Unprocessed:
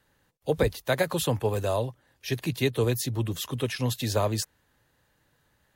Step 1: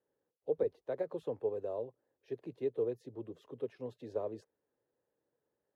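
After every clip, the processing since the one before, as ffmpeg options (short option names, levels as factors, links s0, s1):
-af "bandpass=f=440:t=q:w=2.8:csg=0,volume=0.531"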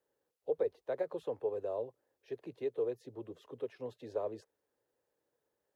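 -filter_complex "[0:a]equalizer=f=180:t=o:w=2.4:g=-6.5,acrossover=split=340[s0][s1];[s0]alimiter=level_in=9.44:limit=0.0631:level=0:latency=1:release=124,volume=0.106[s2];[s2][s1]amix=inputs=2:normalize=0,volume=1.5"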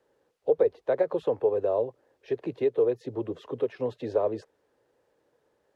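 -filter_complex "[0:a]aemphasis=mode=reproduction:type=50fm,asplit=2[s0][s1];[s1]acompressor=threshold=0.01:ratio=6,volume=0.944[s2];[s0][s2]amix=inputs=2:normalize=0,volume=2.51"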